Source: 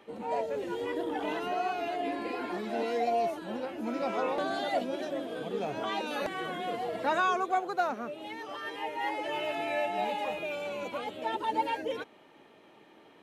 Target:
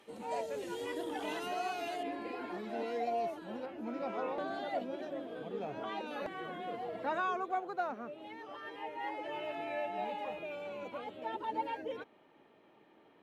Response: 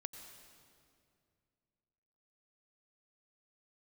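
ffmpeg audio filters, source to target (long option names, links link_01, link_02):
-af "asetnsamples=nb_out_samples=441:pad=0,asendcmd='2.03 equalizer g -4.5;3.66 equalizer g -11',equalizer=frequency=9200:width_type=o:width=2.2:gain=11.5,volume=-6dB"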